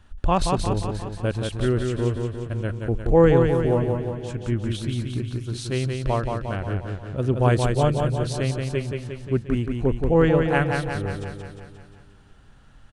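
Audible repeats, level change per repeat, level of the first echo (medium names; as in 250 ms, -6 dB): 7, -4.5 dB, -4.5 dB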